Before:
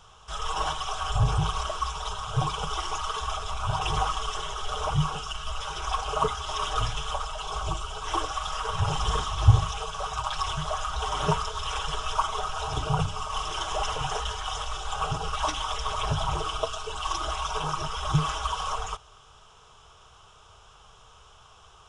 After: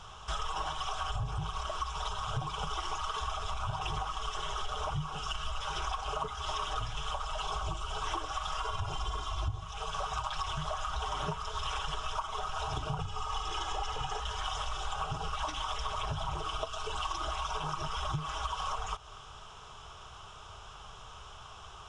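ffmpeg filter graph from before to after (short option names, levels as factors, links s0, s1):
-filter_complex "[0:a]asettb=1/sr,asplit=3[s0][s1][s2];[s0]atrim=end=8.584[s3];[s1]atrim=start=8.58:end=9.63,asetpts=PTS-STARTPTS,afade=t=in:d=0.004:c=qsin,afade=t=out:st=1.046:d=0.004:c=qsin,bandreject=f=1800:w=11,aecho=1:1:2.9:0.55,atrim=end_sample=46305[s4];[s2]atrim=start=9.626[s5];[s3][s4]acrossfade=d=0.004:c1=hsin:c2=qsin[s6];[s6][s5]acrossfade=d=0.004:c1=qsin:c2=hsin,asettb=1/sr,asplit=3[s7][s8][s9];[s7]atrim=end=12.984[s10];[s8]atrim=start=12.98:end=14.2,asetpts=PTS-STARTPTS,afade=t=in:d=0.004:c=qsin,afade=t=out:st=1.216:d=0.004:c=qsin,lowpass=f=9600:w=0.5412,lowpass=f=9600:w=1.3066,aecho=1:1:2.4:0.53,atrim=end_sample=53802[s11];[s9]atrim=start=14.196[s12];[s10][s11]acrossfade=d=0.004:c1=hsin:c2=qsin[s13];[s13][s12]acrossfade=d=0.004:c1=qsin:c2=hsin,highshelf=f=8800:g=-9.5,acompressor=threshold=0.0158:ratio=16,equalizer=f=480:t=o:w=0.25:g=-5.5,volume=1.78"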